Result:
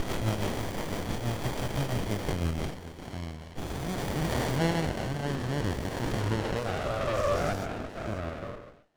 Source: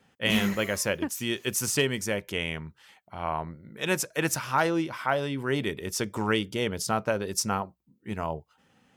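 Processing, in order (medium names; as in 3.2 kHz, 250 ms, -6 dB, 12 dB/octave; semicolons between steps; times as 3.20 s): every event in the spectrogram widened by 480 ms; frequency weighting ITU-R 468; reverb removal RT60 0.65 s; 6.42–7.53 s: peaking EQ 630 Hz +13.5 dB 1.2 oct; in parallel at -1 dB: compression, threshold -21 dBFS, peak gain reduction 14.5 dB; on the sum: band-pass sweep 3.7 kHz -> 620 Hz, 3.61–7.38 s; saturation -20 dBFS, distortion -8 dB; rotary cabinet horn 6 Hz, later 0.6 Hz, at 2.48 s; repeats whose band climbs or falls 136 ms, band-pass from 440 Hz, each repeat 1.4 oct, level -6.5 dB; on a send at -17 dB: reverberation, pre-delay 3 ms; on the sum: sliding maximum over 33 samples; trim +2.5 dB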